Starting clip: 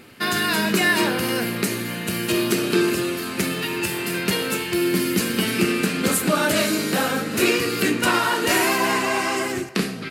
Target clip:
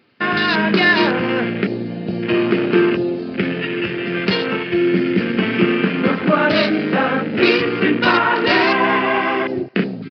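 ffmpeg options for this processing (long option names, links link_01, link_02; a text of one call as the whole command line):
ffmpeg -i in.wav -af "afwtdn=0.0447,aresample=11025,aresample=44100,highpass=110,volume=5.5dB" out.wav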